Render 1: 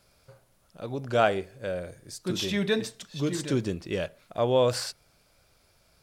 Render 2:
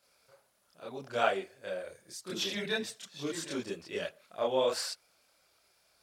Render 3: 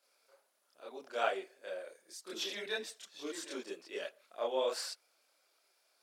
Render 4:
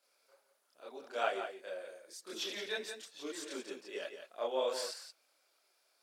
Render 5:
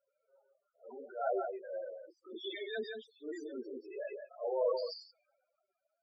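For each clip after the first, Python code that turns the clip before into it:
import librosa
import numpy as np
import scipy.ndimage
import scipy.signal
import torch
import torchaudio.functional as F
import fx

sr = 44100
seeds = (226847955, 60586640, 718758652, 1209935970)

y1 = fx.highpass(x, sr, hz=600.0, slope=6)
y1 = fx.chorus_voices(y1, sr, voices=4, hz=1.5, base_ms=28, depth_ms=3.0, mix_pct=60)
y2 = scipy.signal.sosfilt(scipy.signal.butter(4, 290.0, 'highpass', fs=sr, output='sos'), y1)
y2 = y2 * 10.0 ** (-4.5 / 20.0)
y3 = y2 + 10.0 ** (-8.5 / 20.0) * np.pad(y2, (int(173 * sr / 1000.0), 0))[:len(y2)]
y3 = y3 * 10.0 ** (-1.0 / 20.0)
y4 = fx.transient(y3, sr, attack_db=-11, sustain_db=4)
y4 = fx.spec_topn(y4, sr, count=8)
y4 = fx.env_lowpass(y4, sr, base_hz=1100.0, full_db=-38.5)
y4 = y4 * 10.0 ** (4.5 / 20.0)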